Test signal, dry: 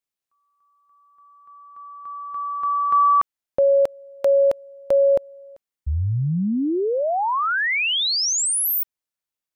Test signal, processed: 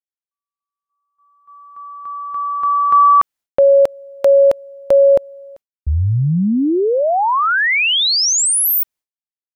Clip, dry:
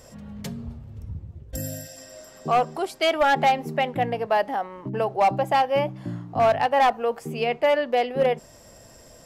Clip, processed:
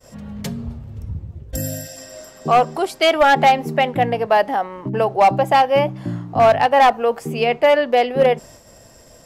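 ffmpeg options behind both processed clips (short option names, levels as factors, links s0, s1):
-af "agate=range=0.0224:threshold=0.00631:ratio=3:release=254:detection=peak,volume=2.11"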